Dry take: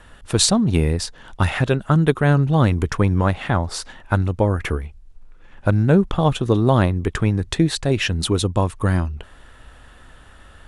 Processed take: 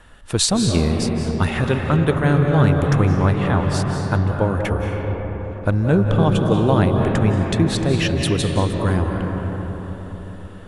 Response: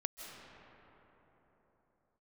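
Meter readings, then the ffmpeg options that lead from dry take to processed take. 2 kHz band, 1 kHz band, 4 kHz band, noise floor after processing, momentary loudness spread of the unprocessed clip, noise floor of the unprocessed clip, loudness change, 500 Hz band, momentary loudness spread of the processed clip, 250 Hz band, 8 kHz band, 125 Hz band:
+0.5 dB, +1.0 dB, −0.5 dB, −35 dBFS, 9 LU, −46 dBFS, +0.5 dB, +1.5 dB, 10 LU, +1.5 dB, −1.0 dB, +1.0 dB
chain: -filter_complex "[1:a]atrim=start_sample=2205,asetrate=39249,aresample=44100[link_01];[0:a][link_01]afir=irnorm=-1:irlink=0"

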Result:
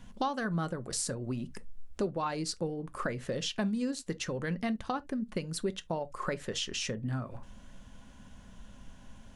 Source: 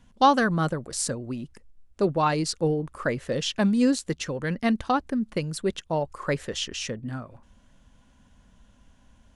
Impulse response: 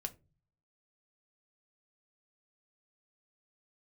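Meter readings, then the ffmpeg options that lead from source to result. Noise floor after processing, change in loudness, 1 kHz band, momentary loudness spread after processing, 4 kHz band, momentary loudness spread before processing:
−53 dBFS, −8.5 dB, −11.5 dB, 21 LU, −5.5 dB, 11 LU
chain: -filter_complex "[0:a]acompressor=threshold=-39dB:ratio=4,asplit=2[link_01][link_02];[1:a]atrim=start_sample=2205,atrim=end_sample=3528[link_03];[link_02][link_03]afir=irnorm=-1:irlink=0,volume=3dB[link_04];[link_01][link_04]amix=inputs=2:normalize=0,volume=-1dB"

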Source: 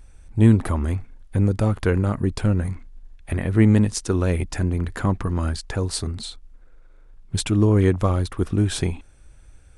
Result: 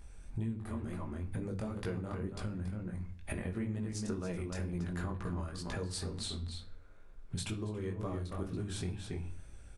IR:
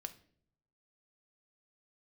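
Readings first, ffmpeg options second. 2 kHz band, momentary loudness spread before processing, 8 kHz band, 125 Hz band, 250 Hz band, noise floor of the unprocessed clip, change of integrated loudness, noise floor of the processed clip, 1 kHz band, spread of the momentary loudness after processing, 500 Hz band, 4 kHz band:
−14.5 dB, 13 LU, −13.5 dB, −18.0 dB, −17.0 dB, −48 dBFS, −17.5 dB, −52 dBFS, −15.0 dB, 5 LU, −16.0 dB, −11.5 dB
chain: -filter_complex "[0:a]bandreject=frequency=50:width_type=h:width=6,bandreject=frequency=100:width_type=h:width=6,bandreject=frequency=150:width_type=h:width=6,bandreject=frequency=200:width_type=h:width=6,asplit=2[link_01][link_02];[link_02]adelay=279.9,volume=-8dB,highshelf=frequency=4000:gain=-6.3[link_03];[link_01][link_03]amix=inputs=2:normalize=0,flanger=delay=17:depth=6.2:speed=2.1,acompressor=threshold=-35dB:ratio=16[link_04];[1:a]atrim=start_sample=2205[link_05];[link_04][link_05]afir=irnorm=-1:irlink=0,volume=4dB"

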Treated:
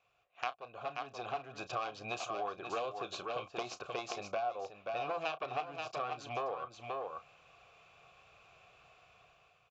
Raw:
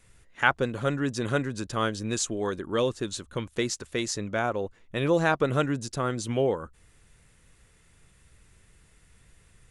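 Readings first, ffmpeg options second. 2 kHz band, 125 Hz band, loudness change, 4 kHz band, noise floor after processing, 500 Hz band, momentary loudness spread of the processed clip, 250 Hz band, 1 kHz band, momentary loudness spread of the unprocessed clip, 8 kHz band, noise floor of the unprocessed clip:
−13.5 dB, −22.5 dB, −12.0 dB, −10.5 dB, −70 dBFS, −12.0 dB, 5 LU, −21.5 dB, −5.5 dB, 9 LU, −19.0 dB, −61 dBFS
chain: -filter_complex "[0:a]equalizer=frequency=125:width_type=o:width=1:gain=4,equalizer=frequency=250:width_type=o:width=1:gain=-9,equalizer=frequency=4000:width_type=o:width=1:gain=3,aeval=exprs='0.596*(cos(1*acos(clip(val(0)/0.596,-1,1)))-cos(1*PI/2))+0.133*(cos(3*acos(clip(val(0)/0.596,-1,1)))-cos(3*PI/2))+0.0473*(cos(4*acos(clip(val(0)/0.596,-1,1)))-cos(4*PI/2))+0.015*(cos(5*acos(clip(val(0)/0.596,-1,1)))-cos(5*PI/2))+0.0668*(cos(7*acos(clip(val(0)/0.596,-1,1)))-cos(7*PI/2))':channel_layout=same,dynaudnorm=framelen=340:gausssize=5:maxgain=13dB,asplit=3[link_01][link_02][link_03];[link_01]bandpass=frequency=730:width_type=q:width=8,volume=0dB[link_04];[link_02]bandpass=frequency=1090:width_type=q:width=8,volume=-6dB[link_05];[link_03]bandpass=frequency=2440:width_type=q:width=8,volume=-9dB[link_06];[link_04][link_05][link_06]amix=inputs=3:normalize=0,aecho=1:1:529:0.335,acompressor=threshold=-51dB:ratio=4,asplit=2[link_07][link_08];[link_08]adelay=33,volume=-13.5dB[link_09];[link_07][link_09]amix=inputs=2:normalize=0,aresample=16000,aresample=44100,volume=14dB"

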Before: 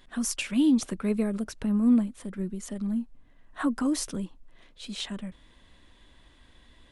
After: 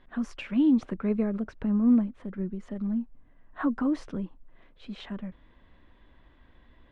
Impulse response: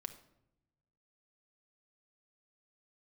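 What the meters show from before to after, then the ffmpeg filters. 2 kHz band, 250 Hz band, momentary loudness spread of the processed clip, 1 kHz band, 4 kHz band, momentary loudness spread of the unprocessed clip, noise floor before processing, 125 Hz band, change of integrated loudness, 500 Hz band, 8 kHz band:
−3.5 dB, 0.0 dB, 16 LU, −0.5 dB, below −10 dB, 16 LU, −58 dBFS, 0.0 dB, 0.0 dB, 0.0 dB, below −20 dB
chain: -af "lowpass=1900"

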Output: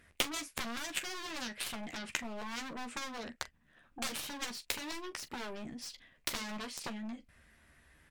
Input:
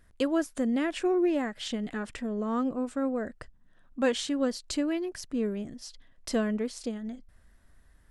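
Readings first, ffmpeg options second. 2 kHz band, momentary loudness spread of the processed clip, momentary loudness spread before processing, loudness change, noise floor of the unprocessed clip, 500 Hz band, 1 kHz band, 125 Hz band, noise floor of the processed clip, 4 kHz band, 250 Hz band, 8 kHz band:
−1.0 dB, 7 LU, 13 LU, −9.5 dB, −60 dBFS, −17.0 dB, −5.0 dB, can't be measured, −68 dBFS, +0.5 dB, −16.0 dB, +1.0 dB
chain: -af "aeval=exprs='0.0447*(abs(mod(val(0)/0.0447+3,4)-2)-1)':channel_layout=same,equalizer=frequency=2400:width_type=o:width=0.74:gain=10.5,acompressor=threshold=-37dB:ratio=3,highpass=frequency=110:poles=1,aeval=exprs='0.0501*(cos(1*acos(clip(val(0)/0.0501,-1,1)))-cos(1*PI/2))+0.00224*(cos(2*acos(clip(val(0)/0.0501,-1,1)))-cos(2*PI/2))+0.0224*(cos(3*acos(clip(val(0)/0.0501,-1,1)))-cos(3*PI/2))+0.00141*(cos(4*acos(clip(val(0)/0.0501,-1,1)))-cos(4*PI/2))':channel_layout=same,aecho=1:1:13|42:0.447|0.158,volume=10.5dB" -ar 44100 -c:a libmp3lame -b:a 112k

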